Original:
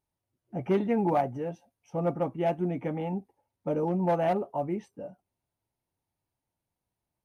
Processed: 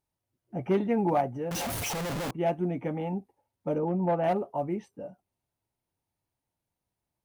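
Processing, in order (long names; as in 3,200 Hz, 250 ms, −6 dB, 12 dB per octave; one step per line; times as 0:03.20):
0:01.51–0:02.31: sign of each sample alone
0:03.78–0:04.24: high-frequency loss of the air 270 metres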